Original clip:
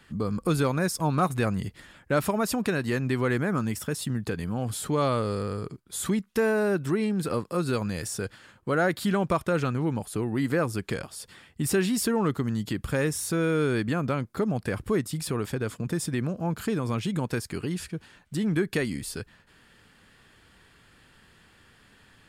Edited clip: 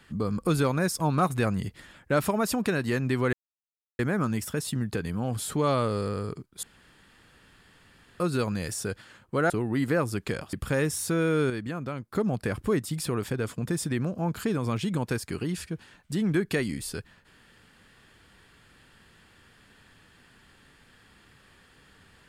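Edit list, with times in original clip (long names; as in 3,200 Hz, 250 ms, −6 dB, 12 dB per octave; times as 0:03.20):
0:03.33: splice in silence 0.66 s
0:05.97–0:07.54: fill with room tone
0:08.84–0:10.12: remove
0:11.15–0:12.75: remove
0:13.72–0:14.34: clip gain −6.5 dB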